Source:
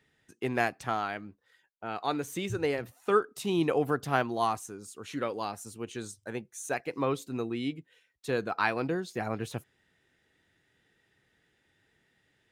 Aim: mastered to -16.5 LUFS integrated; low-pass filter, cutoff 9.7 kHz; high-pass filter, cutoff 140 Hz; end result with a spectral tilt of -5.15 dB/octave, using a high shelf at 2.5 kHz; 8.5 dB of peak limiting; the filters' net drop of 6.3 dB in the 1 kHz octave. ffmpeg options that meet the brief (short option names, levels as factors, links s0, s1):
-af "highpass=140,lowpass=9700,equalizer=f=1000:t=o:g=-8,highshelf=f=2500:g=-6,volume=11.2,alimiter=limit=0.708:level=0:latency=1"